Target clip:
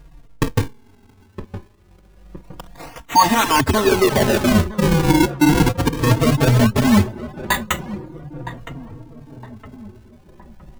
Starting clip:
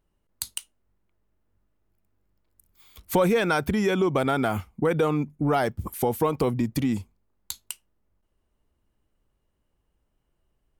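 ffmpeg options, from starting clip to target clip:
ffmpeg -i in.wav -filter_complex "[0:a]afftfilt=real='re*pow(10,19/40*sin(2*PI*(0.55*log(max(b,1)*sr/1024/100)/log(2)-(0.47)*(pts-256)/sr)))':imag='im*pow(10,19/40*sin(2*PI*(0.55*log(max(b,1)*sr/1024/100)/log(2)-(0.47)*(pts-256)/sr)))':win_size=1024:overlap=0.75,asplit=2[link_01][link_02];[link_02]aeval=exprs='(mod(11.9*val(0)+1,2)-1)/11.9':channel_layout=same,volume=-6dB[link_03];[link_01][link_03]amix=inputs=2:normalize=0,bass=frequency=250:gain=-7,treble=frequency=4000:gain=-5,aecho=1:1:1.1:0.82,acrusher=samples=41:mix=1:aa=0.000001:lfo=1:lforange=65.6:lforate=0.23,areverse,acompressor=threshold=-33dB:ratio=10,areverse,asplit=2[link_04][link_05];[link_05]adelay=964,lowpass=frequency=1200:poles=1,volume=-13.5dB,asplit=2[link_06][link_07];[link_07]adelay=964,lowpass=frequency=1200:poles=1,volume=0.53,asplit=2[link_08][link_09];[link_09]adelay=964,lowpass=frequency=1200:poles=1,volume=0.53,asplit=2[link_10][link_11];[link_11]adelay=964,lowpass=frequency=1200:poles=1,volume=0.53,asplit=2[link_12][link_13];[link_13]adelay=964,lowpass=frequency=1200:poles=1,volume=0.53[link_14];[link_04][link_06][link_08][link_10][link_12][link_14]amix=inputs=6:normalize=0,adynamicequalizer=threshold=0.00126:dfrequency=500:dqfactor=5.6:tfrequency=500:tqfactor=5.6:attack=5:release=100:ratio=0.375:range=1.5:mode=boostabove:tftype=bell,alimiter=level_in=23.5dB:limit=-1dB:release=50:level=0:latency=1,asplit=2[link_15][link_16];[link_16]adelay=3.8,afreqshift=-0.35[link_17];[link_15][link_17]amix=inputs=2:normalize=1" out.wav

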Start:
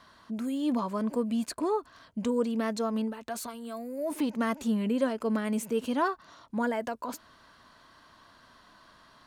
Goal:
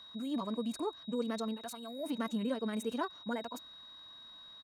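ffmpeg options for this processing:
ffmpeg -i in.wav -af "aeval=exprs='val(0)+0.00631*sin(2*PI*3800*n/s)':channel_layout=same,atempo=2,volume=-6.5dB" out.wav

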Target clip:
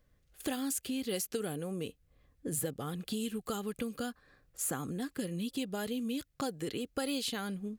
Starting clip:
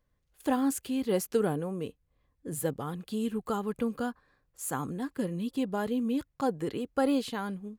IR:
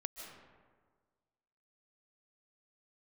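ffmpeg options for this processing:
-filter_complex "[0:a]equalizer=frequency=960:width_type=o:width=0.28:gain=-10.5,acrossover=split=2500[link_01][link_02];[link_01]acompressor=threshold=-41dB:ratio=5[link_03];[link_02]alimiter=level_in=6dB:limit=-24dB:level=0:latency=1:release=378,volume=-6dB[link_04];[link_03][link_04]amix=inputs=2:normalize=0,volume=6dB"

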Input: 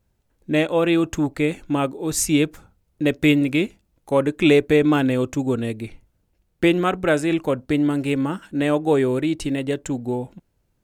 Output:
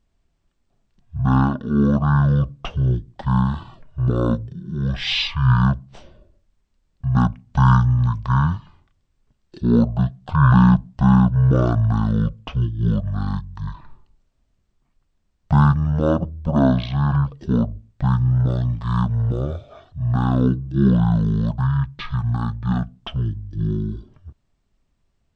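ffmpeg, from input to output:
ffmpeg -i in.wav -af "highshelf=frequency=9600:gain=-6,asetrate=18846,aresample=44100,volume=1.5dB" out.wav

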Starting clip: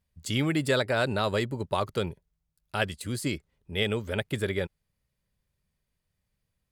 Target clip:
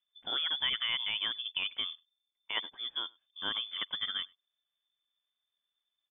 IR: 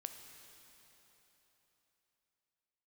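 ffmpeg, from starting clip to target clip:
-filter_complex "[0:a]lowpass=frequency=3100:width_type=q:width=0.5098,lowpass=frequency=3100:width_type=q:width=0.6013,lowpass=frequency=3100:width_type=q:width=0.9,lowpass=frequency=3100:width_type=q:width=2.563,afreqshift=-3600,atempo=1.1,asplit=2[link_01][link_02];[link_02]adelay=99.13,volume=-27dB,highshelf=frequency=4000:gain=-2.23[link_03];[link_01][link_03]amix=inputs=2:normalize=0,volume=-7dB"

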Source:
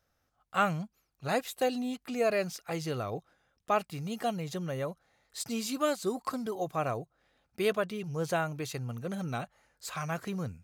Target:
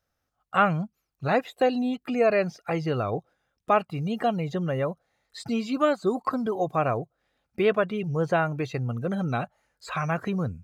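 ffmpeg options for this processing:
ffmpeg -i in.wav -filter_complex "[0:a]acrossover=split=3000[link_01][link_02];[link_02]acompressor=threshold=-51dB:ratio=4:attack=1:release=60[link_03];[link_01][link_03]amix=inputs=2:normalize=0,afftdn=noise_reduction=15:noise_floor=-50,asplit=2[link_04][link_05];[link_05]acompressor=threshold=-45dB:ratio=6,volume=1dB[link_06];[link_04][link_06]amix=inputs=2:normalize=0,volume=5.5dB" out.wav

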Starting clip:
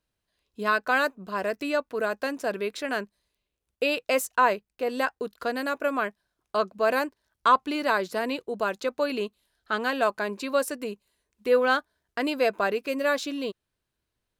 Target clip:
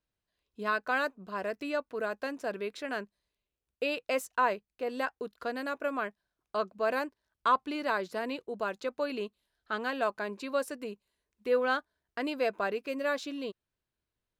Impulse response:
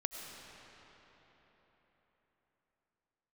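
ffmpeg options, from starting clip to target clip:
-af "highshelf=frequency=6900:gain=-7,volume=-6dB"

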